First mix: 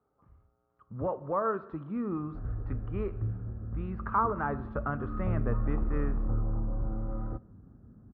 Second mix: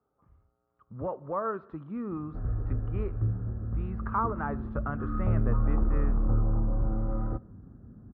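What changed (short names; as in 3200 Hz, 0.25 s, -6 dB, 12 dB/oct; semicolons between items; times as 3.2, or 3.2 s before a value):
speech: send -6.5 dB; background +4.5 dB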